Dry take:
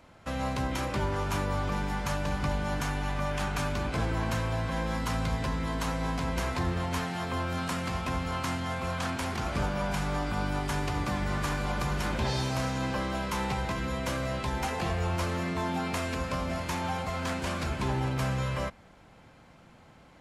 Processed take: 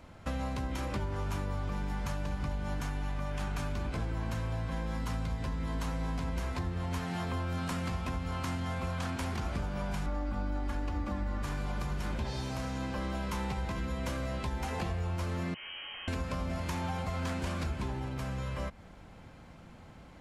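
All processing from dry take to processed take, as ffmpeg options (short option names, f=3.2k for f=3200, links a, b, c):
-filter_complex "[0:a]asettb=1/sr,asplit=3[a][b][c];[a]atrim=end=10.064[d];[b]atrim=start=10.06:end=11.43,asetpts=PTS-STARTPTS,afade=t=in:d=0.004:c=qsin,afade=t=out:st=1.366:d=0.004:c=qsin,highshelf=f=3.3k:g=-11,aecho=1:1:3.6:0.93,atrim=end_sample=60417[e];[c]atrim=start=11.426[f];[d][e]acrossfade=d=0.004:c1=hsin:c2=qsin[g];[g][f]acrossfade=d=0.004:c1=qsin:c2=hsin,asettb=1/sr,asplit=3[h][i][j];[h]atrim=end=15.544[k];[i]atrim=start=15.54:end=16.08,asetpts=PTS-STARTPTS,afade=t=in:d=0.004:c=qsin,afade=t=out:st=0.536:d=0.004:c=qsin,aeval=exprs='(tanh(141*val(0)+0.5)-tanh(0.5))/141':c=same,lowpass=f=2.7k:t=q:w=0.5098,lowpass=f=2.7k:t=q:w=0.6013,lowpass=f=2.7k:t=q:w=0.9,lowpass=f=2.7k:t=q:w=2.563,afreqshift=-3200[l];[j]atrim=start=16.076[m];[k][l]acrossfade=d=0.004:c1=hsin:c2=qsin[n];[n][m]acrossfade=d=0.004:c1=qsin:c2=hsin,lowshelf=f=200:g=8.5,acompressor=threshold=-31dB:ratio=6,equalizer=f=130:t=o:w=0.25:g=-5.5"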